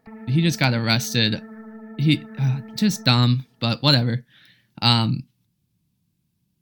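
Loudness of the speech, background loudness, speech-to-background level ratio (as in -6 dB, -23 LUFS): -20.5 LUFS, -40.5 LUFS, 20.0 dB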